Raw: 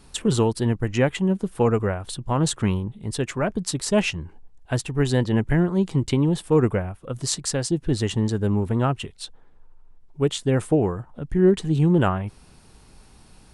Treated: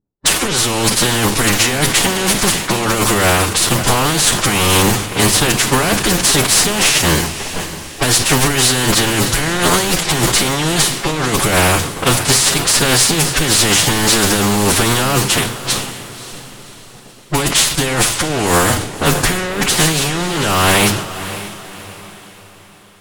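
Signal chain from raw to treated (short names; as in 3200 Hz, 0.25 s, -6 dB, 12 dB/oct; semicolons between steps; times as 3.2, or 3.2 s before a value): spectral contrast lowered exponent 0.3; gate with hold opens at -35 dBFS; sample leveller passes 5; negative-ratio compressor -10 dBFS, ratio -0.5; vibrato 0.36 Hz 6.2 cents; time stretch by phase-locked vocoder 1.7×; low-pass opened by the level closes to 370 Hz, open at -10.5 dBFS; soft clip -3.5 dBFS, distortion -18 dB; diffused feedback echo 0.565 s, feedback 44%, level -13 dB; on a send at -13 dB: reverb RT60 0.45 s, pre-delay 3 ms; on the sum: sustainer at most 76 dB/s; gain -1 dB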